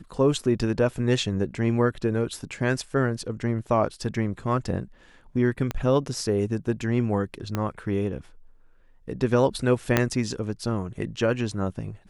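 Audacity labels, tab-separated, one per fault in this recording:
5.710000	5.710000	click −14 dBFS
7.550000	7.550000	click −13 dBFS
9.970000	9.970000	click −5 dBFS

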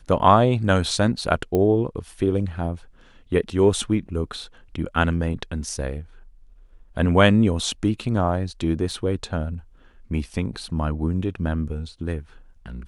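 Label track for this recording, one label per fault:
1.550000	1.550000	click −12 dBFS
8.910000	8.910000	drop-out 3 ms

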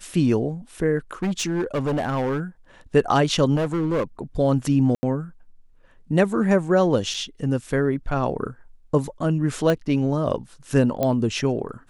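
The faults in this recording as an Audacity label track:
1.220000	2.400000	clipping −20 dBFS
3.550000	4.030000	clipping −19 dBFS
4.950000	5.030000	drop-out 80 ms
7.140000	7.140000	drop-out 4.1 ms
9.700000	9.700000	click −10 dBFS
11.030000	11.030000	click −10 dBFS

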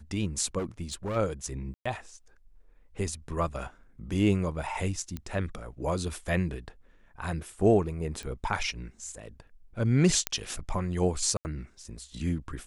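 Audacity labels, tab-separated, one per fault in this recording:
0.580000	1.170000	clipping −29 dBFS
1.740000	1.850000	drop-out 115 ms
5.170000	5.170000	click −22 dBFS
8.230000	8.230000	click −26 dBFS
10.270000	10.270000	click −8 dBFS
11.370000	11.450000	drop-out 79 ms

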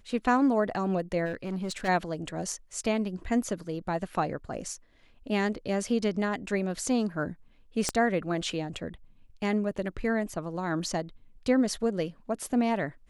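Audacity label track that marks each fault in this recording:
1.250000	1.890000	clipping −28 dBFS
7.890000	7.890000	click −12 dBFS

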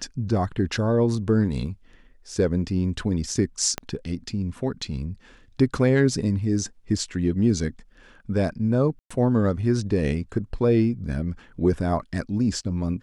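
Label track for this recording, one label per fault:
3.780000	3.780000	click −12 dBFS
8.990000	9.110000	drop-out 115 ms

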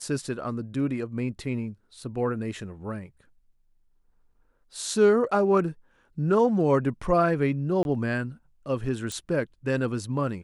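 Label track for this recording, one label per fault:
7.830000	7.850000	drop-out 21 ms
9.120000	9.120000	click −19 dBFS

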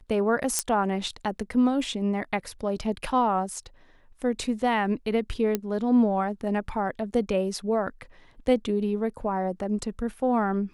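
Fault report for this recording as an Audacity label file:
0.590000	0.590000	click −8 dBFS
5.550000	5.550000	click −11 dBFS

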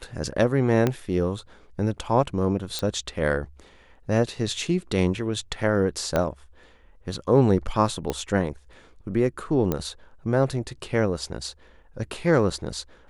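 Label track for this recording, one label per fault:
0.870000	0.870000	click −9 dBFS
2.790000	2.790000	click −13 dBFS
6.160000	6.160000	click −10 dBFS
8.100000	8.100000	click −13 dBFS
9.720000	9.720000	click −11 dBFS

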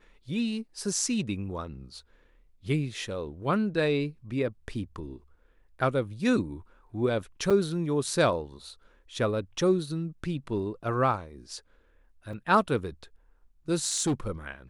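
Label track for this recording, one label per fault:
7.500000	7.510000	drop-out 5.8 ms
12.330000	12.330000	drop-out 3.3 ms
13.860000	14.130000	clipping −22 dBFS

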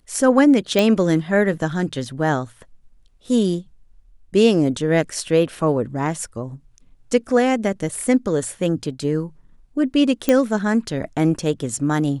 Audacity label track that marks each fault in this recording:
0.790000	0.790000	click
10.290000	10.290000	click −4 dBFS

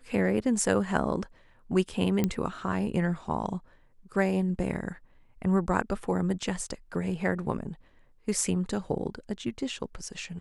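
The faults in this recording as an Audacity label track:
2.240000	2.240000	click −13 dBFS

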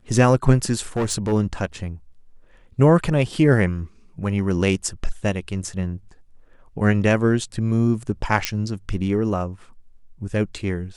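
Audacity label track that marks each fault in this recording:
0.960000	1.330000	clipping −18 dBFS
8.450000	8.450000	click −4 dBFS

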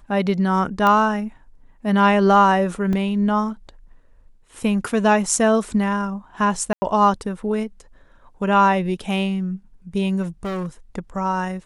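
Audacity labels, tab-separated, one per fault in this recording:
0.870000	0.870000	click −8 dBFS
2.930000	2.930000	drop-out 2.9 ms
6.730000	6.820000	drop-out 90 ms
10.220000	10.670000	clipping −23.5 dBFS

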